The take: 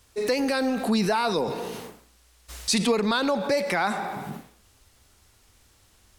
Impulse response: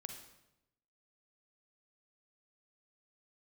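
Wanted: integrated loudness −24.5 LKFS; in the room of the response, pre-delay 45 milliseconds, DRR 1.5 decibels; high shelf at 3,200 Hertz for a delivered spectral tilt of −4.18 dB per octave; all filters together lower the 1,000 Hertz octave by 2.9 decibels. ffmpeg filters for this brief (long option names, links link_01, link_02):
-filter_complex "[0:a]equalizer=frequency=1000:width_type=o:gain=-3,highshelf=frequency=3200:gain=-7.5,asplit=2[link_01][link_02];[1:a]atrim=start_sample=2205,adelay=45[link_03];[link_02][link_03]afir=irnorm=-1:irlink=0,volume=2dB[link_04];[link_01][link_04]amix=inputs=2:normalize=0"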